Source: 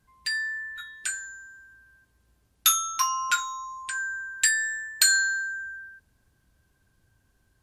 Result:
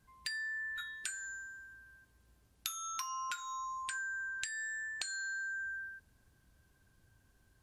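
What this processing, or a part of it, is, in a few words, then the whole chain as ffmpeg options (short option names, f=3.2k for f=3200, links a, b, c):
serial compression, leveller first: -filter_complex "[0:a]acompressor=threshold=-25dB:ratio=2.5,acompressor=threshold=-36dB:ratio=8,asettb=1/sr,asplit=3[a][b][c];[a]atrim=end=4.294[d];[b]atrim=start=4.29:end=5.39,asetpts=PTS-STARTPTS,afade=t=in:d=0.004:c=qsin,afade=t=out:st=1.096:d=0.004:c=qsin,lowpass=f=8.5k:w=0.5412,lowpass=f=8.5k:w=1.3066[e];[c]atrim=start=5.386[f];[d][e]acrossfade=d=0.004:c1=hsin:c2=qsin[g];[g][f]acrossfade=d=0.004:c1=qsin:c2=hsin,volume=-1.5dB"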